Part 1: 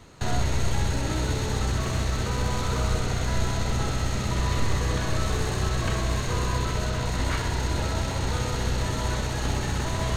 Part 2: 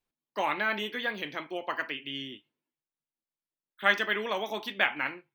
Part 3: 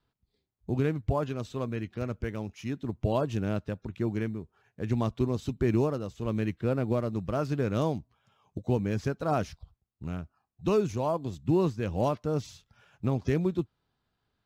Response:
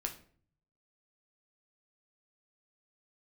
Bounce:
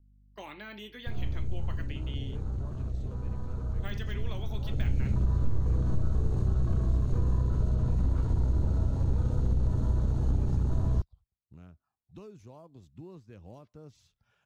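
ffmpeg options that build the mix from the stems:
-filter_complex "[0:a]afwtdn=0.0355,lowshelf=f=370:g=7,adelay=850,volume=-4.5dB,afade=t=in:st=4.67:d=0.29:silence=0.251189[a];[1:a]agate=range=-15dB:threshold=-42dB:ratio=16:detection=peak,deesser=0.85,volume=-8dB[b];[2:a]acompressor=threshold=-40dB:ratio=2,adelay=1500,volume=-12dB[c];[a][b]amix=inputs=2:normalize=0,aeval=exprs='val(0)+0.000794*(sin(2*PI*50*n/s)+sin(2*PI*2*50*n/s)/2+sin(2*PI*3*50*n/s)/3+sin(2*PI*4*50*n/s)/4+sin(2*PI*5*50*n/s)/5)':c=same,acompressor=threshold=-25dB:ratio=6,volume=0dB[d];[c][d]amix=inputs=2:normalize=0,lowshelf=f=77:g=6,acrossover=split=430|3000[e][f][g];[f]acompressor=threshold=-54dB:ratio=2[h];[e][h][g]amix=inputs=3:normalize=0"

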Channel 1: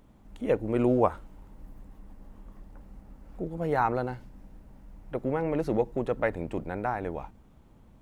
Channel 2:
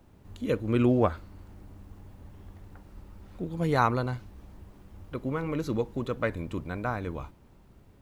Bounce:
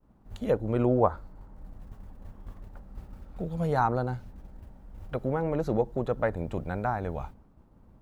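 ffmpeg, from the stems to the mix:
-filter_complex "[0:a]lowpass=f=1.6k:w=0.5412,lowpass=f=1.6k:w=1.3066,volume=0.5dB,asplit=2[a][b];[1:a]agate=range=-12dB:threshold=-45dB:ratio=16:detection=peak,acrossover=split=420|3000[c][d][e];[d]acompressor=threshold=-41dB:ratio=6[f];[c][f][e]amix=inputs=3:normalize=0,volume=2dB[g];[b]apad=whole_len=353266[h];[g][h]sidechaincompress=threshold=-33dB:ratio=4:attack=34:release=663[i];[a][i]amix=inputs=2:normalize=0,agate=range=-33dB:threshold=-51dB:ratio=3:detection=peak"

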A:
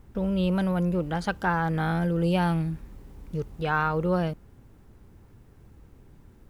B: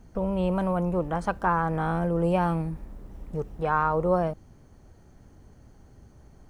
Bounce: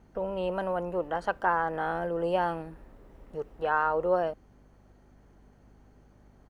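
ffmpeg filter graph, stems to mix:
-filter_complex "[0:a]volume=-9dB[a];[1:a]volume=-1,adelay=0.9,volume=-2.5dB[b];[a][b]amix=inputs=2:normalize=0,aeval=exprs='val(0)+0.00355*(sin(2*PI*50*n/s)+sin(2*PI*2*50*n/s)/2+sin(2*PI*3*50*n/s)/3+sin(2*PI*4*50*n/s)/4+sin(2*PI*5*50*n/s)/5)':c=same,bass=f=250:g=-10,treble=f=4k:g=-8"

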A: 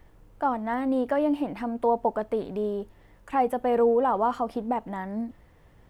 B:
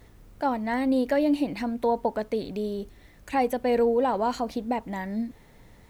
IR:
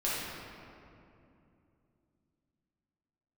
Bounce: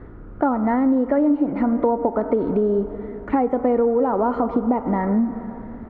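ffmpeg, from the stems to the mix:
-filter_complex "[0:a]highpass=890,alimiter=level_in=2dB:limit=-24dB:level=0:latency=1,volume=-2dB,volume=-1.5dB,asplit=2[a][b];[b]volume=-9.5dB[c];[1:a]lowshelf=f=210:g=9.5,adelay=0.5,volume=2dB,asplit=2[d][e];[e]volume=-22.5dB[f];[2:a]atrim=start_sample=2205[g];[c][f]amix=inputs=2:normalize=0[h];[h][g]afir=irnorm=-1:irlink=0[i];[a][d][i]amix=inputs=3:normalize=0,lowpass=f=1.4k:t=q:w=3.4,equalizer=f=330:t=o:w=1.4:g=12,acompressor=threshold=-16dB:ratio=6"

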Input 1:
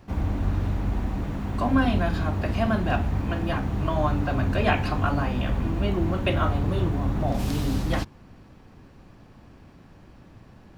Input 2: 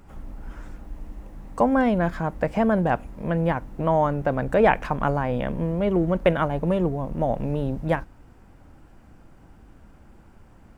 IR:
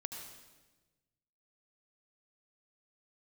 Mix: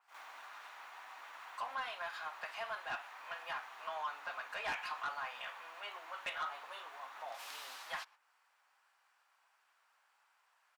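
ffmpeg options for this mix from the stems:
-filter_complex "[0:a]acompressor=threshold=-41dB:ratio=1.5,volume=0dB[a];[1:a]adelay=1,volume=-11.5dB,asplit=2[b][c];[c]apad=whole_len=475070[d];[a][d]sidechaingate=range=-16dB:threshold=-53dB:ratio=16:detection=peak[e];[e][b]amix=inputs=2:normalize=0,highpass=f=970:w=0.5412,highpass=f=970:w=1.3066,asoftclip=type=tanh:threshold=-33dB,adynamicequalizer=threshold=0.00112:dfrequency=3900:dqfactor=0.7:tfrequency=3900:tqfactor=0.7:attack=5:release=100:ratio=0.375:range=2:mode=cutabove:tftype=highshelf"

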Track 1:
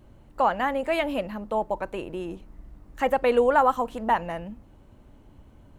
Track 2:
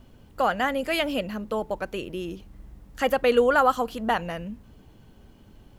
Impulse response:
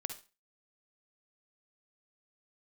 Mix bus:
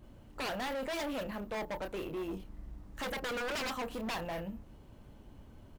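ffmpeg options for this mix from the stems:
-filter_complex "[0:a]volume=-3.5dB[a];[1:a]acompressor=threshold=-26dB:ratio=2.5,acrusher=samples=3:mix=1:aa=0.000001,asoftclip=type=tanh:threshold=-30dB,volume=-1,adelay=28,volume=-8dB[b];[a][b]amix=inputs=2:normalize=0,aeval=exprs='0.0501*(abs(mod(val(0)/0.0501+3,4)-2)-1)':c=same,volume=34.5dB,asoftclip=hard,volume=-34.5dB"

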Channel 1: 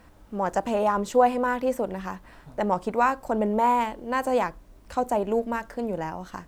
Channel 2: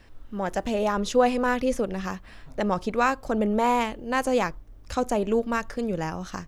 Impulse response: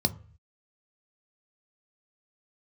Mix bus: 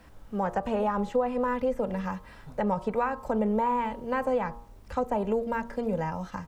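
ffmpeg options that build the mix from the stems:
-filter_complex "[0:a]volume=-1dB[a];[1:a]deesser=0.9,volume=-1,adelay=2.8,volume=-7dB[b];[a][b]amix=inputs=2:normalize=0,acrossover=split=2800[c][d];[d]acompressor=threshold=-56dB:ratio=4:attack=1:release=60[e];[c][e]amix=inputs=2:normalize=0,bandreject=f=117.5:t=h:w=4,bandreject=f=235:t=h:w=4,bandreject=f=352.5:t=h:w=4,bandreject=f=470:t=h:w=4,bandreject=f=587.5:t=h:w=4,bandreject=f=705:t=h:w=4,bandreject=f=822.5:t=h:w=4,bandreject=f=940:t=h:w=4,bandreject=f=1.0575k:t=h:w=4,bandreject=f=1.175k:t=h:w=4,bandreject=f=1.2925k:t=h:w=4,acrossover=split=150[f][g];[g]acompressor=threshold=-24dB:ratio=4[h];[f][h]amix=inputs=2:normalize=0"

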